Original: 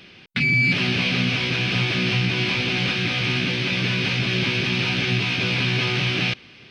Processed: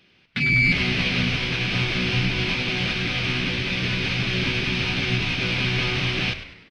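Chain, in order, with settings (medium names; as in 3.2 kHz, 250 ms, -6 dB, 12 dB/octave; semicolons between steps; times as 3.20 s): on a send: frequency-shifting echo 100 ms, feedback 60%, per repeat -99 Hz, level -8.5 dB; on the sum: upward expansion 1.5:1, over -41 dBFS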